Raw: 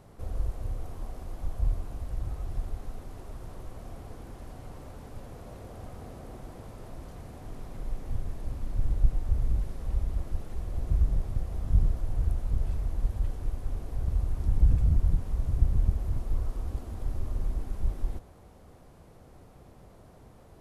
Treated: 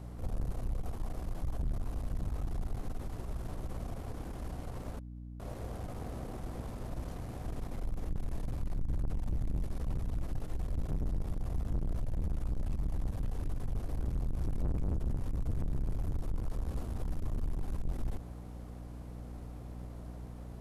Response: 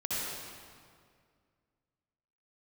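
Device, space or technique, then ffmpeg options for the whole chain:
valve amplifier with mains hum: -filter_complex "[0:a]asettb=1/sr,asplit=3[a][b][c];[a]atrim=end=4.994[d];[b]atrim=start=4.99:end=5.4,asetpts=PTS-STARTPTS,afade=t=in:d=0.004:c=qsin,afade=t=out:st=0.406:d=0.004:c=qsin,agate=range=-32dB:threshold=-33dB:ratio=16:detection=peak[e];[c]atrim=start=5.396[f];[d][e]acrossfade=d=0.004:c1=hsin:c2=qsin[g];[g][f]acrossfade=d=0.004:c1=qsin:c2=hsin,aeval=exprs='(tanh(50.1*val(0)+0.5)-tanh(0.5))/50.1':c=same,aeval=exprs='val(0)+0.00447*(sin(2*PI*60*n/s)+sin(2*PI*2*60*n/s)/2+sin(2*PI*3*60*n/s)/3+sin(2*PI*4*60*n/s)/4+sin(2*PI*5*60*n/s)/5)':c=same,volume=3.5dB"

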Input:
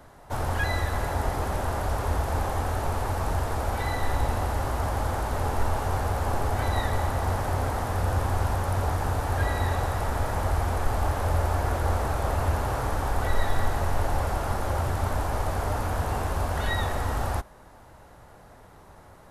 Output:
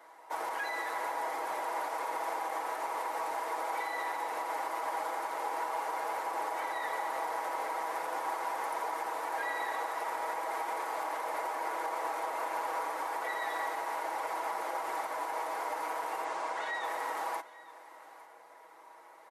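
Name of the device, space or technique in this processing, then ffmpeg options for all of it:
laptop speaker: -filter_complex "[0:a]highpass=f=360:w=0.5412,highpass=f=360:w=1.3066,equalizer=f=960:t=o:w=0.4:g=9,equalizer=f=2.1k:t=o:w=0.32:g=9.5,alimiter=limit=-20dB:level=0:latency=1:release=80,asettb=1/sr,asplit=3[a][b][c];[a]atrim=end=16.244[d];[b]atrim=start=16.24:end=16.84,asetpts=PTS-STARTPTS,afade=t=in:d=0.004:c=qsin,afade=t=out:st=0.596:d=0.004:c=qsin,lowpass=f=8.6k:w=0.5412,lowpass=f=8.6k:w=1.3066[e];[c]atrim=start=16.836[f];[d][e]acrossfade=d=0.004:c1=hsin:c2=qsin[g];[g][f]acrossfade=d=0.004:c1=qsin:c2=hsin,aecho=1:1:6.2:0.63,aecho=1:1:855:0.112,volume=-7.5dB"

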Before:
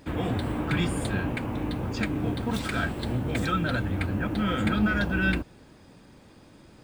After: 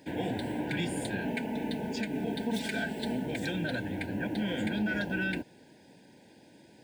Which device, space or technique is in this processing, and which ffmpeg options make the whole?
PA system with an anti-feedback notch: -filter_complex "[0:a]asettb=1/sr,asplit=3[a][b][c];[a]atrim=end=1.214[d];[b]atrim=start=1.21:end=3.26,asetpts=PTS-STARTPTS,afade=t=in:d=0.004:c=qsin,afade=t=out:st=2.046:d=0.004:c=qsin,aecho=1:1:4.6:0.72,atrim=end_sample=90405[e];[c]atrim=start=3.256[f];[d][e]acrossfade=d=0.004:c1=hsin:c2=qsin[g];[g][f]acrossfade=d=0.004:c1=qsin:c2=hsin,highpass=170,asuperstop=centerf=1200:order=12:qfactor=2.5,alimiter=limit=-20dB:level=0:latency=1:release=114,volume=-2.5dB"

